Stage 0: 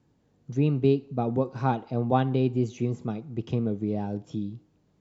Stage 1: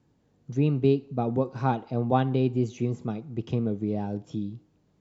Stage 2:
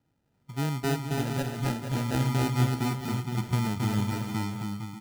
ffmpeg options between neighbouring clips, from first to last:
ffmpeg -i in.wav -af anull out.wav
ffmpeg -i in.wav -af "asubboost=boost=4:cutoff=250,acrusher=samples=40:mix=1:aa=0.000001,aecho=1:1:270|459|591.3|683.9|748.7:0.631|0.398|0.251|0.158|0.1,volume=-8dB" out.wav

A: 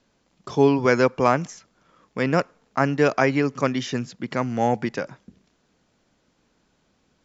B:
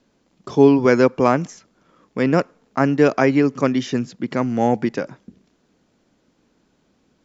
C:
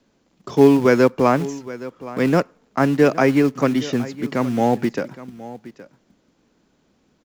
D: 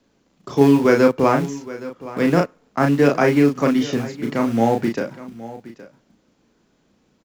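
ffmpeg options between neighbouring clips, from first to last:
ffmpeg -i in.wav -af "equalizer=frequency=290:width_type=o:width=1.7:gain=6.5" out.wav
ffmpeg -i in.wav -filter_complex "[0:a]acrossover=split=240[link_01][link_02];[link_01]acrusher=bits=3:mode=log:mix=0:aa=0.000001[link_03];[link_03][link_02]amix=inputs=2:normalize=0,aecho=1:1:818:0.141" out.wav
ffmpeg -i in.wav -filter_complex "[0:a]asplit=2[link_01][link_02];[link_02]adelay=35,volume=-4dB[link_03];[link_01][link_03]amix=inputs=2:normalize=0,volume=-1dB" out.wav

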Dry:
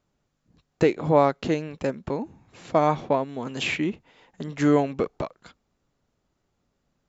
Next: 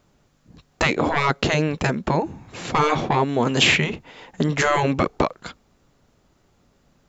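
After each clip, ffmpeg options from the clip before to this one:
ffmpeg -i in.wav -af "acontrast=80,afftfilt=real='re*lt(hypot(re,im),0.562)':imag='im*lt(hypot(re,im),0.562)':win_size=1024:overlap=0.75,volume=6dB" out.wav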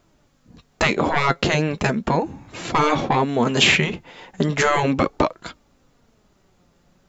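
ffmpeg -i in.wav -af "flanger=delay=2.9:depth=3:regen=65:speed=0.37:shape=triangular,volume=5.5dB" out.wav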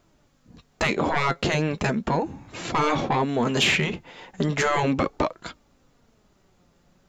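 ffmpeg -i in.wav -filter_complex "[0:a]asplit=2[link_01][link_02];[link_02]alimiter=limit=-13dB:level=0:latency=1:release=21,volume=-2dB[link_03];[link_01][link_03]amix=inputs=2:normalize=0,asoftclip=type=tanh:threshold=-3.5dB,volume=-7dB" out.wav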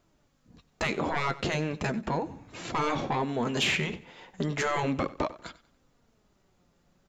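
ffmpeg -i in.wav -af "aecho=1:1:94|188|282:0.126|0.0428|0.0146,volume=-6dB" out.wav

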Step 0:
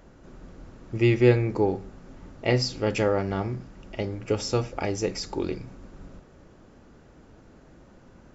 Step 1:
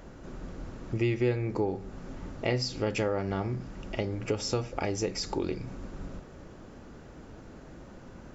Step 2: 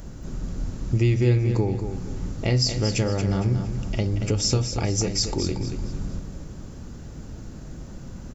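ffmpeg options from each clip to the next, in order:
ffmpeg -i in.wav -af "acompressor=threshold=-35dB:ratio=2.5,volume=4.5dB" out.wav
ffmpeg -i in.wav -af "bass=frequency=250:gain=12,treble=frequency=4000:gain=14,aecho=1:1:230|460|690|920:0.376|0.128|0.0434|0.0148" out.wav

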